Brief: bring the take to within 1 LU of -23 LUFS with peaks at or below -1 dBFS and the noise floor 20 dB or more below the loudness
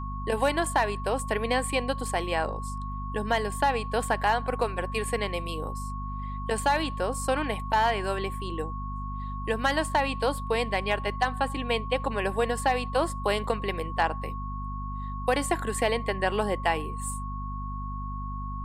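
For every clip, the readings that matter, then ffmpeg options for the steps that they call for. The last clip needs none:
hum 50 Hz; harmonics up to 250 Hz; hum level -32 dBFS; steady tone 1100 Hz; tone level -37 dBFS; loudness -28.5 LUFS; peak -10.0 dBFS; loudness target -23.0 LUFS
-> -af "bandreject=f=50:t=h:w=6,bandreject=f=100:t=h:w=6,bandreject=f=150:t=h:w=6,bandreject=f=200:t=h:w=6,bandreject=f=250:t=h:w=6"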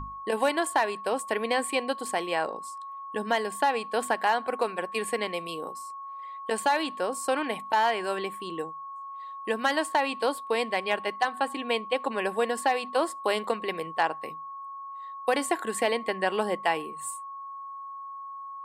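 hum none; steady tone 1100 Hz; tone level -37 dBFS
-> -af "bandreject=f=1.1k:w=30"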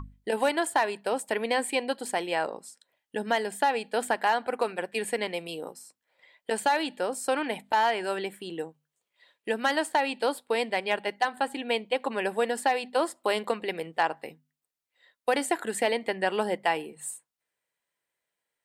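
steady tone none; loudness -29.0 LUFS; peak -10.5 dBFS; loudness target -23.0 LUFS
-> -af "volume=6dB"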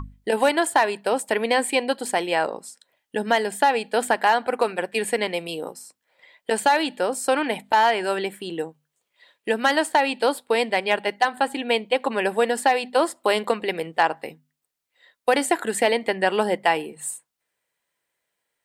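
loudness -23.0 LUFS; peak -4.5 dBFS; noise floor -80 dBFS

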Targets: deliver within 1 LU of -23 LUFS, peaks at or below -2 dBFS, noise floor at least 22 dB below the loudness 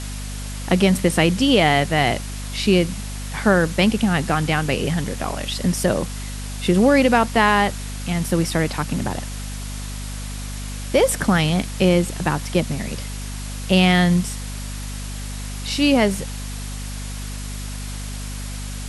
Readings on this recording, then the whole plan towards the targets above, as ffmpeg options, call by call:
hum 50 Hz; harmonics up to 250 Hz; hum level -28 dBFS; noise floor -30 dBFS; noise floor target -42 dBFS; loudness -19.5 LUFS; peak -3.5 dBFS; loudness target -23.0 LUFS
-> -af "bandreject=f=50:t=h:w=6,bandreject=f=100:t=h:w=6,bandreject=f=150:t=h:w=6,bandreject=f=200:t=h:w=6,bandreject=f=250:t=h:w=6"
-af "afftdn=nr=12:nf=-30"
-af "volume=-3.5dB"

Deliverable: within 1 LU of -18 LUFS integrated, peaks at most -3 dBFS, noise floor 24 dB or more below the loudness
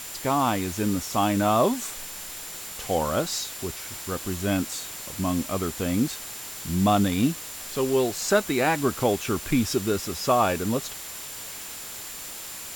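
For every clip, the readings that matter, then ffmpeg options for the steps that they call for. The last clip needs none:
steady tone 7200 Hz; tone level -43 dBFS; noise floor -38 dBFS; noise floor target -51 dBFS; loudness -26.5 LUFS; peak -9.0 dBFS; loudness target -18.0 LUFS
-> -af "bandreject=f=7.2k:w=30"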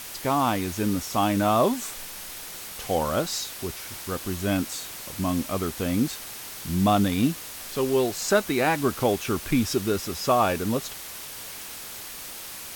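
steady tone none; noise floor -39 dBFS; noise floor target -51 dBFS
-> -af "afftdn=nr=12:nf=-39"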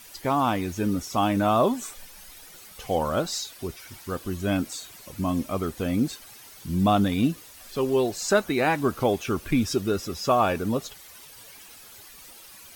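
noise floor -47 dBFS; noise floor target -50 dBFS
-> -af "afftdn=nr=6:nf=-47"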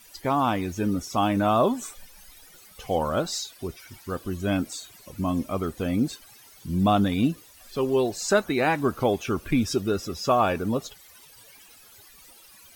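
noise floor -52 dBFS; loudness -25.5 LUFS; peak -9.0 dBFS; loudness target -18.0 LUFS
-> -af "volume=7.5dB,alimiter=limit=-3dB:level=0:latency=1"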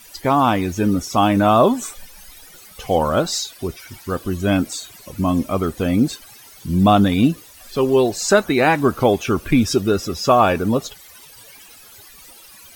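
loudness -18.0 LUFS; peak -3.0 dBFS; noise floor -44 dBFS

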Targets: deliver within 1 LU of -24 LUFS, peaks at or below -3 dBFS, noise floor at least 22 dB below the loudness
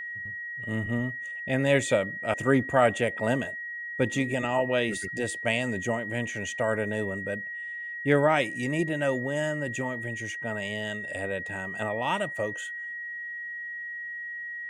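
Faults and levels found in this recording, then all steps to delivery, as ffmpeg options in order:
steady tone 1900 Hz; tone level -34 dBFS; loudness -28.5 LUFS; peak -8.0 dBFS; loudness target -24.0 LUFS
-> -af "bandreject=f=1.9k:w=30"
-af "volume=4.5dB"

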